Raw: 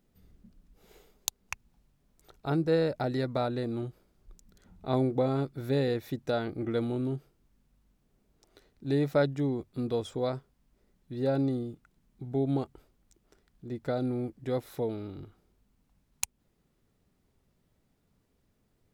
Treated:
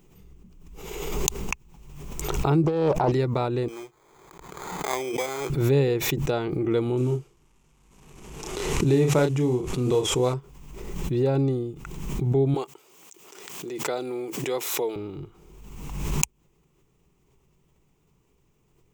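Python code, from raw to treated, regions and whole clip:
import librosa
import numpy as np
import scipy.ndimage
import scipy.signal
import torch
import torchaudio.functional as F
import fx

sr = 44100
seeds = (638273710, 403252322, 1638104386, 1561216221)

y = fx.chain(x, sr, fx.peak_eq(hz=760.0, db=10.5, octaves=1.4),
    fx.over_compress(threshold_db=-27.0, ratio=-1.0),
    fx.doppler_dist(depth_ms=0.46), at=(2.64, 3.12))
y = fx.chain(y, sr, fx.highpass(hz=640.0, slope=12),
    fx.sample_hold(seeds[0], rate_hz=2800.0, jitter_pct=0), at=(3.68, 5.5))
y = fx.chain(y, sr, fx.cvsd(bps=64000),
    fx.doubler(ms=32.0, db=-5.5), at=(6.97, 10.34))
y = fx.chain(y, sr, fx.highpass(hz=400.0, slope=12),
    fx.high_shelf(hz=2400.0, db=8.5), at=(12.54, 14.96))
y = fx.ripple_eq(y, sr, per_octave=0.72, db=9)
y = fx.pre_swell(y, sr, db_per_s=38.0)
y = y * 10.0 ** (4.5 / 20.0)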